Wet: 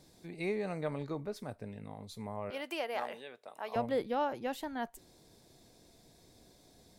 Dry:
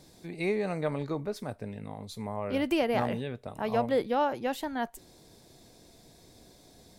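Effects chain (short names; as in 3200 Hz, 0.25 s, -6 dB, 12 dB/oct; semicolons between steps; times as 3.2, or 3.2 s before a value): 2.5–3.76 HPF 580 Hz 12 dB/oct; gain -5.5 dB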